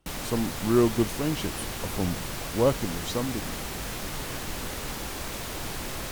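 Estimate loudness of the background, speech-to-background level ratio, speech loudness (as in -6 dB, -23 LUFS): -34.0 LUFS, 5.5 dB, -28.5 LUFS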